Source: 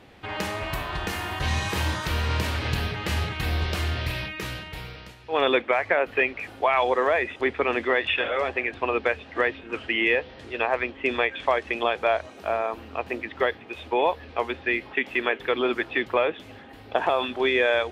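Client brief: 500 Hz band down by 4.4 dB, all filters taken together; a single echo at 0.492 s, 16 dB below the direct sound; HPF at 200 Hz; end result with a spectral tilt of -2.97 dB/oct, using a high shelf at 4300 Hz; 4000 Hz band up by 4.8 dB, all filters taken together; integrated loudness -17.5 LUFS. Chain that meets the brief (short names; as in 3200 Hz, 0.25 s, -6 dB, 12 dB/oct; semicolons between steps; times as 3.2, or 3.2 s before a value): HPF 200 Hz; bell 500 Hz -5.5 dB; bell 4000 Hz +8.5 dB; high shelf 4300 Hz -4.5 dB; echo 0.492 s -16 dB; gain +8.5 dB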